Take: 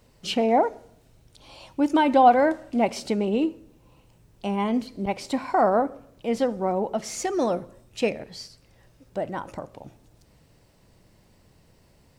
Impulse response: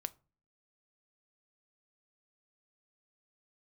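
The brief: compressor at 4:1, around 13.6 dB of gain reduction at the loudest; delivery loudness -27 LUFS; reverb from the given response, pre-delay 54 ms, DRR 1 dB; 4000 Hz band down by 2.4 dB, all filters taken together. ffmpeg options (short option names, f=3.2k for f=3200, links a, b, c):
-filter_complex "[0:a]equalizer=f=4k:t=o:g=-3.5,acompressor=threshold=-27dB:ratio=4,asplit=2[a][b];[1:a]atrim=start_sample=2205,adelay=54[c];[b][c]afir=irnorm=-1:irlink=0,volume=1dB[d];[a][d]amix=inputs=2:normalize=0,volume=2.5dB"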